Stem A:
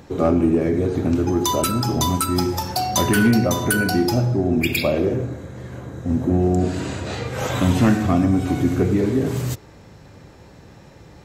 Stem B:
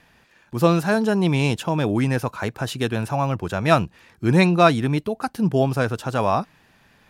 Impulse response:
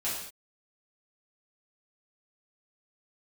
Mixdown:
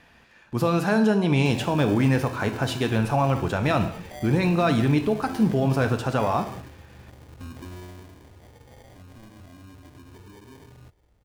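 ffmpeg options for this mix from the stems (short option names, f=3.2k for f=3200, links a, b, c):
-filter_complex "[0:a]asubboost=boost=7.5:cutoff=55,alimiter=limit=-17dB:level=0:latency=1:release=78,acrusher=samples=33:mix=1:aa=0.000001,adelay=1350,volume=-14dB,afade=t=out:st=7.54:d=0.67:silence=0.375837[a];[1:a]highshelf=f=7.6k:g=-7.5,alimiter=limit=-14.5dB:level=0:latency=1,volume=-0.5dB,asplit=2[b][c];[c]volume=-10.5dB[d];[2:a]atrim=start_sample=2205[e];[d][e]afir=irnorm=-1:irlink=0[f];[a][b][f]amix=inputs=3:normalize=0"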